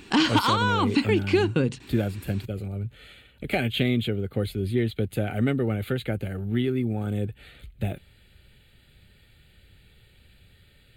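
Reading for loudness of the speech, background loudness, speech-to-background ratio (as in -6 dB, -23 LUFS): -28.5 LUFS, -23.5 LUFS, -5.0 dB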